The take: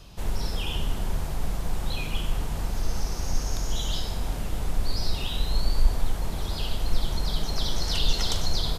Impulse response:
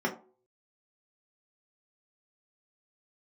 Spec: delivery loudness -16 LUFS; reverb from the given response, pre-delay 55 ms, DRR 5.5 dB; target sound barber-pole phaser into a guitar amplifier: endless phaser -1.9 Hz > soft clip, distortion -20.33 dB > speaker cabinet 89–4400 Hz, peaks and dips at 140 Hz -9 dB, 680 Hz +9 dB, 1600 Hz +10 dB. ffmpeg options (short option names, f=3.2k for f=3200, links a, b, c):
-filter_complex "[0:a]asplit=2[a][b];[1:a]atrim=start_sample=2205,adelay=55[c];[b][c]afir=irnorm=-1:irlink=0,volume=-15dB[d];[a][d]amix=inputs=2:normalize=0,asplit=2[e][f];[f]afreqshift=-1.9[g];[e][g]amix=inputs=2:normalize=1,asoftclip=threshold=-15dB,highpass=89,equalizer=f=140:t=q:w=4:g=-9,equalizer=f=680:t=q:w=4:g=9,equalizer=f=1.6k:t=q:w=4:g=10,lowpass=f=4.4k:w=0.5412,lowpass=f=4.4k:w=1.3066,volume=20dB"